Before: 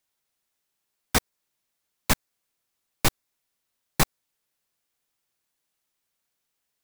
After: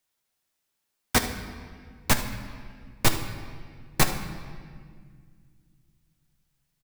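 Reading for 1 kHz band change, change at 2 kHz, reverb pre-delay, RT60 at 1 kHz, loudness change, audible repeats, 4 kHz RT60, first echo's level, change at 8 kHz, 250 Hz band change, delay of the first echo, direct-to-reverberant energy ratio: +1.0 dB, +1.5 dB, 8 ms, 1.8 s, -0.5 dB, 1, 1.5 s, -14.5 dB, +0.5 dB, +1.5 dB, 75 ms, 5.0 dB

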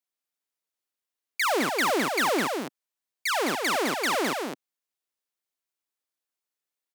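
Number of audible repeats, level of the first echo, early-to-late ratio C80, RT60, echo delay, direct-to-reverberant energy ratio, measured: 1, -5.0 dB, no reverb, no reverb, 209 ms, no reverb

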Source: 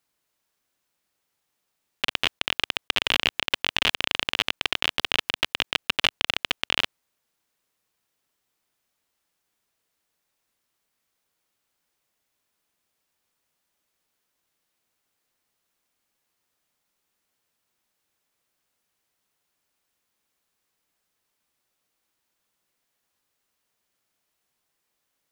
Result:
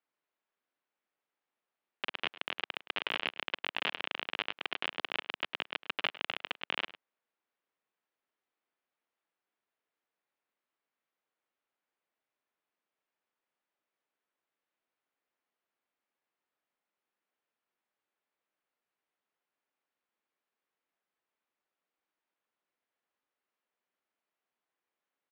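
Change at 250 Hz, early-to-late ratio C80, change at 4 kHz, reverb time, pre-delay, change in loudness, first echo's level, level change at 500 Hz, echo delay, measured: -10.0 dB, no reverb, -13.0 dB, no reverb, no reverb, -11.0 dB, -17.5 dB, -7.5 dB, 104 ms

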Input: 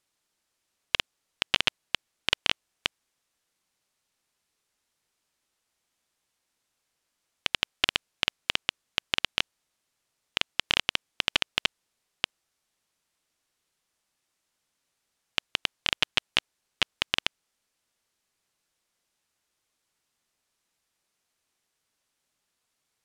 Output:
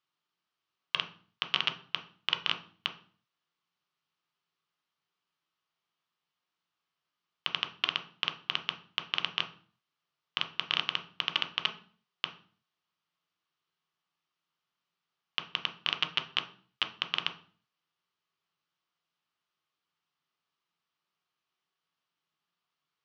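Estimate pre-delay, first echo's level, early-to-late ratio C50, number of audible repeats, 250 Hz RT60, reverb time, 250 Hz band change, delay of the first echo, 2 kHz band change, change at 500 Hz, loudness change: 6 ms, no echo, 12.0 dB, no echo, 0.70 s, 0.45 s, -6.5 dB, no echo, -5.5 dB, -8.5 dB, -4.0 dB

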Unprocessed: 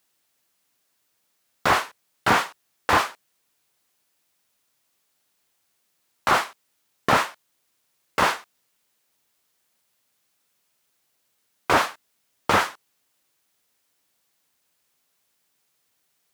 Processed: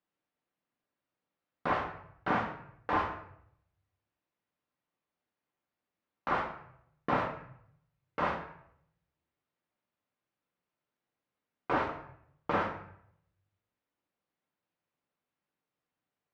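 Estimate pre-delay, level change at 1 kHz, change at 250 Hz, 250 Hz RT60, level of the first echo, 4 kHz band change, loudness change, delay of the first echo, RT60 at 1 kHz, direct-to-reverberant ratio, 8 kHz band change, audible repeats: 3 ms, -10.0 dB, -6.5 dB, 0.75 s, no echo, -20.0 dB, -11.0 dB, no echo, 0.65 s, 1.5 dB, under -30 dB, no echo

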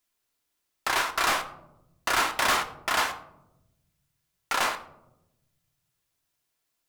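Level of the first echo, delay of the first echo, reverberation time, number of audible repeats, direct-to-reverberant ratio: no echo, no echo, 0.90 s, no echo, 6.5 dB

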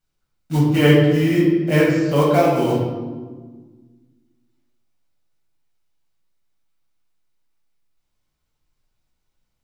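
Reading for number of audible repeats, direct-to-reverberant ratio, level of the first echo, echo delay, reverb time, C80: no echo, -5.5 dB, no echo, no echo, 1.4 s, 4.0 dB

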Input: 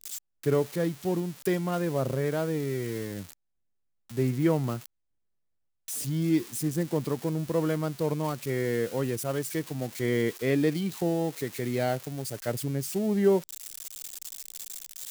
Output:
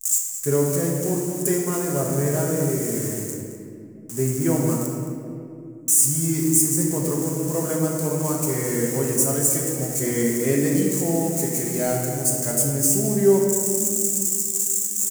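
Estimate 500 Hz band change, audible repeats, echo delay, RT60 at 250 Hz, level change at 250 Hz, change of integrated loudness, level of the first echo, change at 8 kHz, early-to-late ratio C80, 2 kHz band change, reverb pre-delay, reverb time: +5.5 dB, 1, 217 ms, 4.3 s, +6.0 dB, +8.5 dB, -12.5 dB, +20.0 dB, 2.5 dB, +2.5 dB, 5 ms, 2.6 s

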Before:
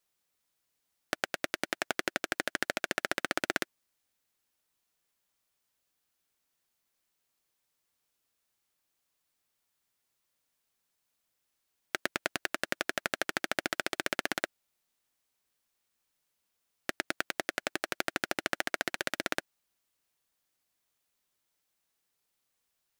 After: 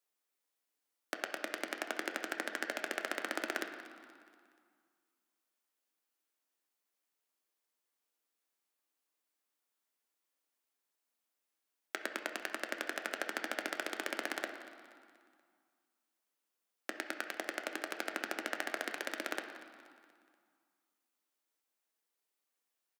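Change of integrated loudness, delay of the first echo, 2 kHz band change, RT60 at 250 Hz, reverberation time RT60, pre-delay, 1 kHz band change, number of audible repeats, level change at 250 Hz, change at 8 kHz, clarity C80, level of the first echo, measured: -5.5 dB, 239 ms, -5.0 dB, 2.3 s, 2.1 s, 7 ms, -4.5 dB, 3, -4.5 dB, -6.5 dB, 8.5 dB, -17.0 dB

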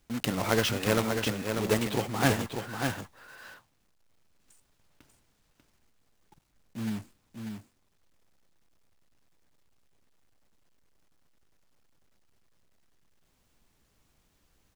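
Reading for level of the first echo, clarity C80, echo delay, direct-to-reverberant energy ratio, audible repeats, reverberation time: -6.0 dB, no reverb, 592 ms, no reverb, 1, no reverb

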